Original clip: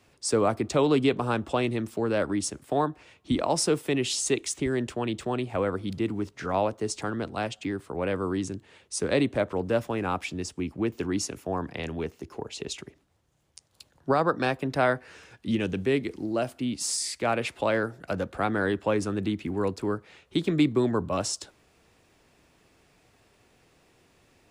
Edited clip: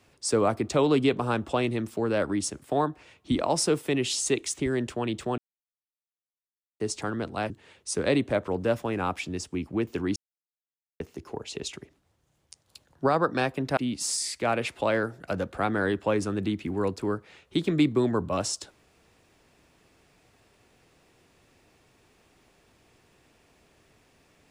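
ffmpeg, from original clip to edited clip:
-filter_complex "[0:a]asplit=7[s0][s1][s2][s3][s4][s5][s6];[s0]atrim=end=5.38,asetpts=PTS-STARTPTS,afade=t=out:st=5.376:d=0.004:c=hsin[s7];[s1]atrim=start=5.38:end=6.8,asetpts=PTS-STARTPTS,volume=0[s8];[s2]atrim=start=6.8:end=7.502,asetpts=PTS-STARTPTS,afade=t=in:d=0.004:c=hsin[s9];[s3]atrim=start=8.548:end=11.21,asetpts=PTS-STARTPTS,afade=t=out:st=2.658:d=0.004:c=hsin[s10];[s4]atrim=start=11.21:end=12.05,asetpts=PTS-STARTPTS,volume=0[s11];[s5]atrim=start=12.05:end=14.822,asetpts=PTS-STARTPTS,afade=t=in:d=0.004:c=hsin[s12];[s6]atrim=start=16.568[s13];[s7][s8][s9]concat=n=3:v=0:a=1[s14];[s10][s11][s12]concat=n=3:v=0:a=1[s15];[s14][s15]acrossfade=d=0.004:c1=hsin:c2=hsin[s16];[s16][s13]acrossfade=d=0.004:c1=hsin:c2=hsin"

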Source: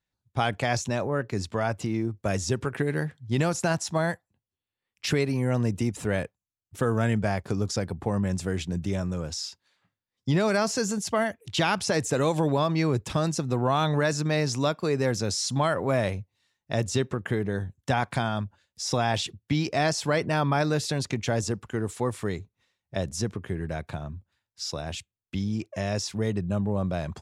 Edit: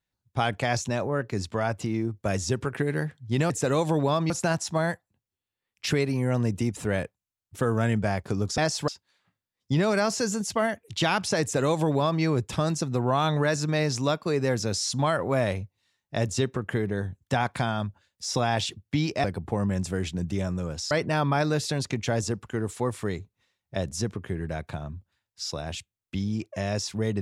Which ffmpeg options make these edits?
-filter_complex "[0:a]asplit=7[s0][s1][s2][s3][s4][s5][s6];[s0]atrim=end=3.502[s7];[s1]atrim=start=11.988:end=12.792[s8];[s2]atrim=start=3.498:end=7.782[s9];[s3]atrim=start=19.808:end=20.112[s10];[s4]atrim=start=9.448:end=19.812[s11];[s5]atrim=start=7.778:end=9.452[s12];[s6]atrim=start=20.108[s13];[s7][s8]acrossfade=d=0.004:c1=hsin:c2=hsin[s14];[s14][s9]acrossfade=d=0.004:c1=hsin:c2=hsin[s15];[s15][s10]acrossfade=d=0.004:c1=hsin:c2=hsin[s16];[s16][s11]acrossfade=d=0.004:c1=hsin:c2=hsin[s17];[s17][s12]acrossfade=d=0.004:c1=hsin:c2=hsin[s18];[s18][s13]acrossfade=d=0.004:c1=hsin:c2=hsin"

